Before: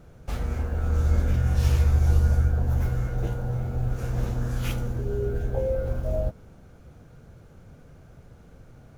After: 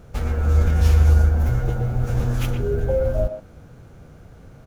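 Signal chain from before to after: time stretch by phase-locked vocoder 0.52×; speakerphone echo 0.12 s, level -7 dB; gain +6.5 dB

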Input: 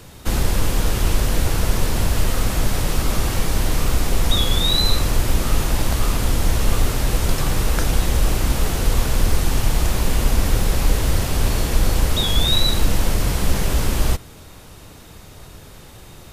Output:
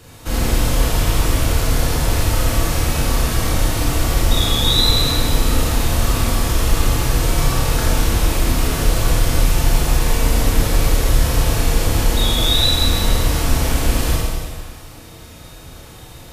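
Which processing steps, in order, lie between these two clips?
notch comb 200 Hz; Schroeder reverb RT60 1.7 s, combs from 27 ms, DRR -5 dB; gain -1.5 dB

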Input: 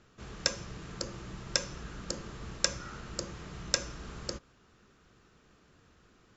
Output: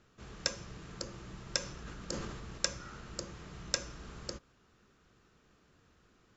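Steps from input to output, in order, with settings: 1.59–2.58 sustainer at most 31 dB/s; gain -4 dB

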